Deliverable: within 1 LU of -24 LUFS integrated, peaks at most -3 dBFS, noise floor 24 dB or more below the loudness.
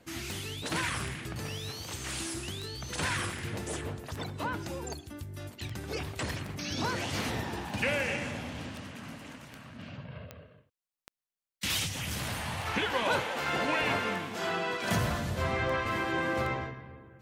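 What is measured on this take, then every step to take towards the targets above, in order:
clicks found 22; loudness -33.0 LUFS; peak level -15.5 dBFS; loudness target -24.0 LUFS
-> de-click; trim +9 dB

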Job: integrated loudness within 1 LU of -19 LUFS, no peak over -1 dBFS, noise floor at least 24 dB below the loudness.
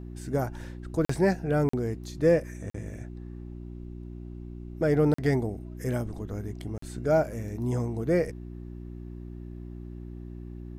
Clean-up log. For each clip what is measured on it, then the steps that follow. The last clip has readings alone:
dropouts 5; longest dropout 44 ms; hum 60 Hz; highest harmonic 360 Hz; hum level -38 dBFS; loudness -28.5 LUFS; peak level -11.0 dBFS; loudness target -19.0 LUFS
-> interpolate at 1.05/1.69/2.70/5.14/6.78 s, 44 ms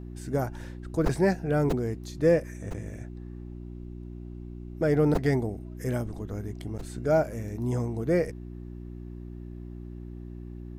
dropouts 0; hum 60 Hz; highest harmonic 360 Hz; hum level -38 dBFS
-> de-hum 60 Hz, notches 6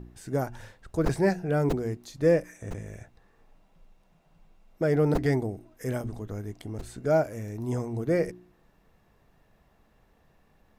hum not found; loudness -28.5 LUFS; peak level -11.5 dBFS; loudness target -19.0 LUFS
-> trim +9.5 dB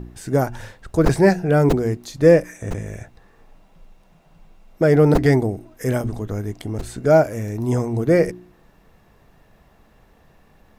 loudness -19.0 LUFS; peak level -2.0 dBFS; noise floor -55 dBFS

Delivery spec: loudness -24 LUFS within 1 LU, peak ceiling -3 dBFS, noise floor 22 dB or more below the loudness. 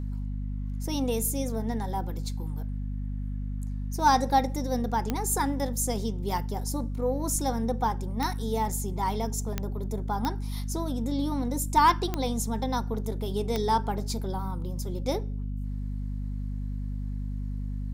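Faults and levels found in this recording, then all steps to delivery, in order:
clicks found 6; hum 50 Hz; highest harmonic 250 Hz; hum level -29 dBFS; loudness -29.5 LUFS; peak level -11.0 dBFS; loudness target -24.0 LUFS
-> de-click; de-hum 50 Hz, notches 5; trim +5.5 dB

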